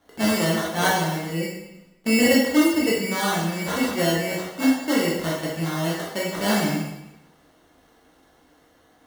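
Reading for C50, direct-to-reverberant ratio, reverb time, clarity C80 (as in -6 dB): 1.0 dB, -5.5 dB, 0.95 s, 4.5 dB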